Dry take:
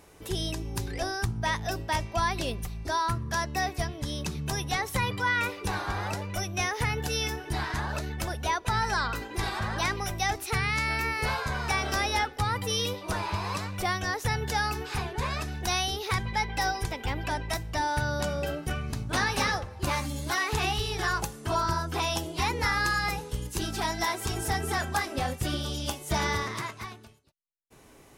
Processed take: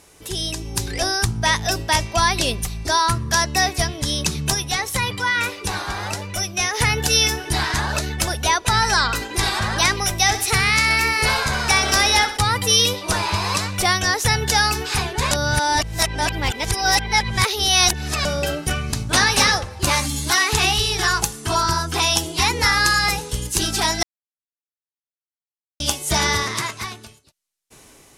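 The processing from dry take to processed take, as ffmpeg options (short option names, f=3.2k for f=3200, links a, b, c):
-filter_complex "[0:a]asplit=3[a][b][c];[a]afade=t=out:st=4.53:d=0.02[d];[b]flanger=delay=2:depth=3.1:regen=-86:speed=1.6:shape=sinusoidal,afade=t=in:st=4.53:d=0.02,afade=t=out:st=6.73:d=0.02[e];[c]afade=t=in:st=6.73:d=0.02[f];[d][e][f]amix=inputs=3:normalize=0,asettb=1/sr,asplit=3[g][h][i];[g]atrim=end=10.194[j];[h]atrim=start=10.19:end=12.37,asetpts=PTS-STARTPTS,afade=t=in:d=0.004:c=qsin,afade=t=out:st=2.176:d=0.004:c=qsin,aecho=1:1:64|128|192|256|320|384:0.251|0.143|0.0816|0.0465|0.0265|0.0151,atrim=end_sample=96138[k];[i]atrim=start=12.366[l];[j][k]acrossfade=d=0.004:c1=hsin:c2=qsin[m];[m][l]acrossfade=d=0.004:c1=qsin:c2=hsin,asettb=1/sr,asplit=3[n][o][p];[n]atrim=end=20.074[q];[o]atrim=start=20.07:end=22.57,asetpts=PTS-STARTPTS,afade=t=in:d=0.004:c=qsin,afade=t=out:st=2.496:d=0.004:c=qsin,bandreject=f=570:w=5.1[r];[p]atrim=start=22.566[s];[q][r]acrossfade=d=0.004:c1=hsin:c2=qsin[t];[t][s]acrossfade=d=0.004:c1=qsin:c2=hsin,asplit=5[u][v][w][x][y];[u]atrim=end=15.312[z];[v]atrim=start=15.308:end=18.252,asetpts=PTS-STARTPTS,areverse[aa];[w]atrim=start=18.248:end=24.03,asetpts=PTS-STARTPTS,afade=t=out:st=5.778:d=0.004:c=hsin[ab];[x]atrim=start=24.03:end=25.8,asetpts=PTS-STARTPTS,volume=0[ac];[y]atrim=start=25.8,asetpts=PTS-STARTPTS,afade=t=in:d=0.004:c=hsin[ad];[z][aa]acrossfade=d=0.004:c1=hsin:c2=hsin[ae];[ab][ac][ad]concat=n=3:v=0:a=1[af];[ae][af]acrossfade=d=0.004:c1=hsin:c2=hsin,lowpass=11k,highshelf=f=3.1k:g=11.5,dynaudnorm=f=160:g=9:m=7dB,volume=1dB"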